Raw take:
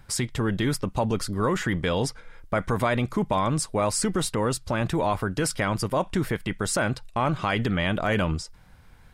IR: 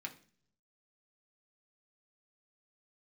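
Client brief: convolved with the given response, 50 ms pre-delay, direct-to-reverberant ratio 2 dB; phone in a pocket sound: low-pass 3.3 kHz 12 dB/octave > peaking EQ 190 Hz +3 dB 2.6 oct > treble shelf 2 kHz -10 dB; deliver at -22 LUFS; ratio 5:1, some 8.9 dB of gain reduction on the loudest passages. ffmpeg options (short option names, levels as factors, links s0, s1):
-filter_complex "[0:a]acompressor=threshold=0.0316:ratio=5,asplit=2[s0][s1];[1:a]atrim=start_sample=2205,adelay=50[s2];[s1][s2]afir=irnorm=-1:irlink=0,volume=0.891[s3];[s0][s3]amix=inputs=2:normalize=0,lowpass=3300,equalizer=f=190:t=o:w=2.6:g=3,highshelf=f=2000:g=-10,volume=3.16"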